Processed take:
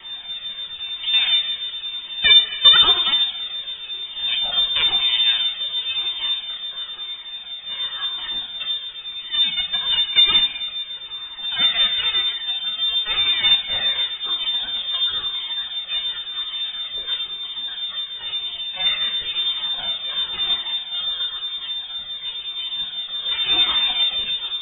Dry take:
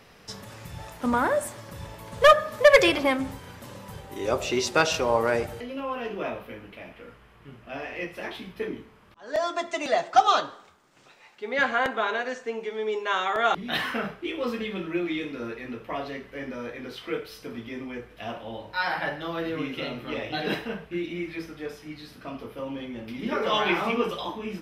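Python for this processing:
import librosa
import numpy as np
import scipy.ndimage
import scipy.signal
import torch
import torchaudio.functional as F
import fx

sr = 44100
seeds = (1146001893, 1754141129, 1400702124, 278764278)

y = x + 0.5 * 10.0 ** (-34.0 / 20.0) * np.sign(x)
y = fx.low_shelf(y, sr, hz=190.0, db=-7.5)
y = np.maximum(y, 0.0)
y = fx.wow_flutter(y, sr, seeds[0], rate_hz=2.1, depth_cents=74.0)
y = fx.room_shoebox(y, sr, seeds[1], volume_m3=1600.0, walls='mixed', distance_m=0.92)
y = fx.freq_invert(y, sr, carrier_hz=3600)
y = fx.comb_cascade(y, sr, direction='falling', hz=0.97)
y = y * 10.0 ** (4.5 / 20.0)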